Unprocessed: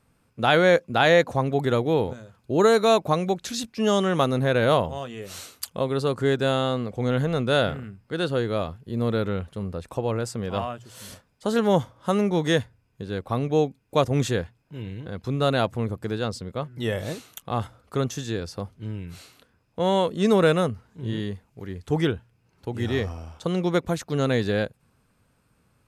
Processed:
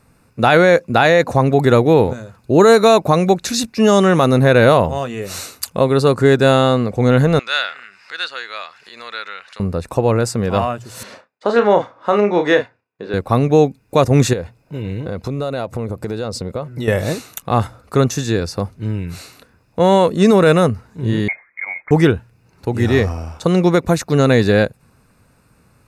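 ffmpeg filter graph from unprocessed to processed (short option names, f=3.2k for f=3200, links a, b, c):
-filter_complex "[0:a]asettb=1/sr,asplit=3[a][b][c];[a]atrim=end=7.394[d];[b]atrim=start=7.39:end=9.6,asetpts=PTS-STARTPTS,afade=t=in:d=0.004:c=qsin,afade=t=out:st=2.206:d=0.004:c=qsin,asuperpass=centerf=3000:order=4:qfactor=0.69,acompressor=mode=upward:threshold=-38dB:ratio=2.5:attack=3.2:release=140:knee=2.83:detection=peak[e];[c]atrim=start=9.596[f];[d][e]acrossfade=d=0.004:c1=hsin:c2=qsin[g];[g][f]acrossfade=d=0.004:c1=qsin:c2=hsin,asettb=1/sr,asplit=3[h][i][j];[h]atrim=end=11.034[k];[i]atrim=start=11.03:end=13.14,asetpts=PTS-STARTPTS,afade=t=in:d=0.004:c=qsin,afade=t=out:st=2.106:d=0.004:c=qsin,agate=range=-33dB:threshold=-58dB:ratio=3:release=100:detection=peak,highpass=380,lowpass=3k,asplit=2[l][m];[m]adelay=34,volume=-7dB[n];[l][n]amix=inputs=2:normalize=0,atrim=end_sample=93051[o];[j]atrim=start=13.136[p];[k][o]acrossfade=d=0.004:c1=hsin:c2=qsin[q];[q][p]acrossfade=d=0.004:c1=qsin:c2=hsin,asettb=1/sr,asplit=3[r][s][t];[r]atrim=end=14.334[u];[s]atrim=start=14.33:end=16.88,asetpts=PTS-STARTPTS,afade=t=in:d=0.004:c=qsin,afade=t=out:st=2.546:d=0.004:c=qsin,equalizer=f=550:t=o:w=0.76:g=5.5,bandreject=f=1.7k:w=12,acompressor=threshold=-30dB:ratio=8:attack=3.2:release=140:knee=1:detection=peak[v];[t]atrim=start=16.876[w];[u][v]acrossfade=d=0.004:c1=hsin:c2=qsin[x];[x][w]acrossfade=d=0.004:c1=qsin:c2=hsin,asettb=1/sr,asplit=3[y][z][aa];[y]atrim=end=21.284[ab];[z]atrim=start=21.28:end=21.91,asetpts=PTS-STARTPTS,afade=t=in:d=0.004:c=qsin,afade=t=out:st=0.626:d=0.004:c=qsin,highpass=f=500:t=q:w=3.2,lowpass=f=2.2k:t=q:w=0.5098,lowpass=f=2.2k:t=q:w=0.6013,lowpass=f=2.2k:t=q:w=0.9,lowpass=f=2.2k:t=q:w=2.563,afreqshift=-2600[ac];[aa]atrim=start=21.906[ad];[ab][ac]acrossfade=d=0.004:c1=hsin:c2=qsin[ae];[ae][ad]acrossfade=d=0.004:c1=qsin:c2=hsin,bandreject=f=3.2k:w=5.2,alimiter=level_in=12dB:limit=-1dB:release=50:level=0:latency=1,volume=-1dB"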